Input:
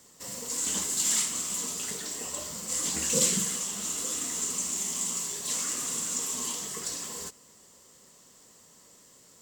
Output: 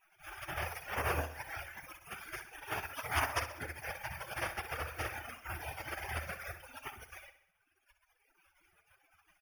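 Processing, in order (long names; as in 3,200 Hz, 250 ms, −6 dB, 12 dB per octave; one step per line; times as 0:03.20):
gate on every frequency bin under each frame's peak −25 dB weak
reverb reduction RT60 1.8 s
in parallel at +0.5 dB: downward compressor, threshold −58 dBFS, peak gain reduction 19 dB
on the sum: moving average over 11 samples
parametric band 81 Hz +10 dB 0.39 octaves
on a send: repeating echo 64 ms, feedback 52%, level −12 dB
on the sum: level +18 dB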